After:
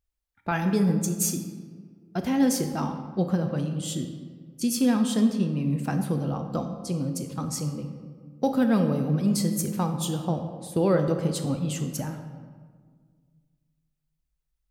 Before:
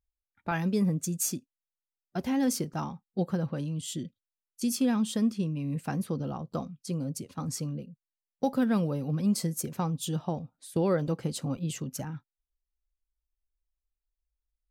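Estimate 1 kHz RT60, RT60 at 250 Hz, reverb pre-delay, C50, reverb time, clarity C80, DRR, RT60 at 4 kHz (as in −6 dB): 1.6 s, 2.2 s, 19 ms, 7.5 dB, 1.7 s, 9.0 dB, 6.0 dB, 0.95 s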